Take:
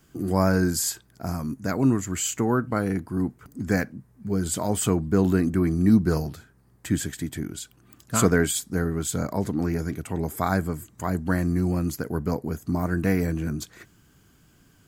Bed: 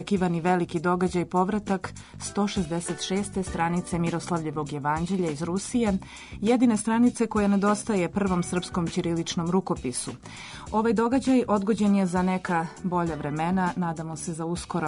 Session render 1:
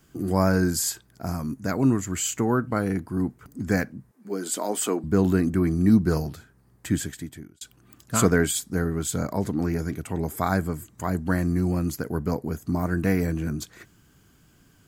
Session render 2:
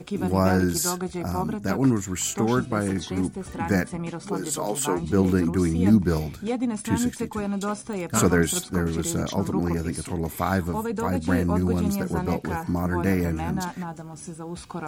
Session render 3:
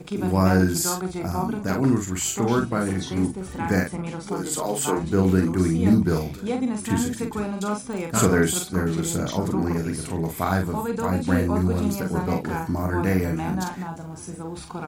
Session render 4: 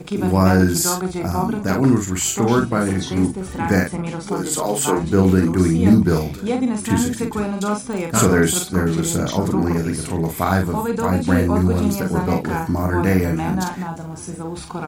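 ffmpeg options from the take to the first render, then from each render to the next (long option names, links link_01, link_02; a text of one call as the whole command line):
ffmpeg -i in.wav -filter_complex "[0:a]asettb=1/sr,asplit=3[link_01][link_02][link_03];[link_01]atrim=end=4.114[link_04];[link_02]atrim=start=4.11:end=5.04,asetpts=PTS-STARTPTS,afade=type=in:duration=0.004:curve=qsin,afade=type=out:start_time=0.926:duration=0.004:curve=qsin,highpass=frequency=260:width=0.5412,highpass=frequency=260:width=1.3066[link_05];[link_03]atrim=start=5.036[link_06];[link_04][link_05]acrossfade=duration=0.004:curve1=hsin:curve2=qsin[link_07];[link_07][link_06]acrossfade=duration=0.004:curve1=qsin:curve2=hsin,asplit=2[link_08][link_09];[link_08]atrim=end=7.61,asetpts=PTS-STARTPTS,afade=type=out:start_time=6.95:duration=0.66[link_10];[link_09]atrim=start=7.61,asetpts=PTS-STARTPTS,afade=type=in:duration=0.004:curve=hsin[link_11];[link_10][link_11]concat=n=2:v=0:a=1" out.wav
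ffmpeg -i in.wav -i bed.wav -filter_complex "[1:a]volume=-5.5dB[link_01];[0:a][link_01]amix=inputs=2:normalize=0" out.wav
ffmpeg -i in.wav -filter_complex "[0:a]asplit=2[link_01][link_02];[link_02]adelay=43,volume=-5dB[link_03];[link_01][link_03]amix=inputs=2:normalize=0,asplit=2[link_04][link_05];[link_05]adelay=1224,volume=-23dB,highshelf=frequency=4000:gain=-27.6[link_06];[link_04][link_06]amix=inputs=2:normalize=0" out.wav
ffmpeg -i in.wav -af "volume=5dB,alimiter=limit=-3dB:level=0:latency=1" out.wav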